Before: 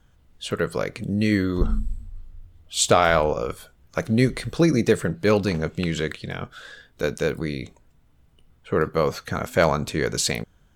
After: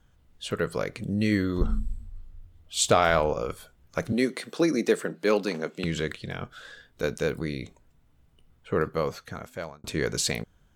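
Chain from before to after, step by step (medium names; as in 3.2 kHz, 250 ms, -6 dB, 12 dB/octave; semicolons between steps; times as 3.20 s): 4.12–5.84 s: high-pass 220 Hz 24 dB/octave; 8.73–9.84 s: fade out; trim -3.5 dB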